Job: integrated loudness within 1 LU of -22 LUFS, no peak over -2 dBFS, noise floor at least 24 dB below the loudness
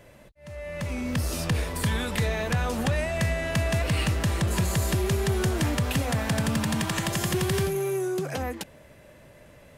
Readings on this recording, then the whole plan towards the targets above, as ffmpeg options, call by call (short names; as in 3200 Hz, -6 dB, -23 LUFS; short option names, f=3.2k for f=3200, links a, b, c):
loudness -27.0 LUFS; peak -16.0 dBFS; loudness target -22.0 LUFS
-> -af "volume=5dB"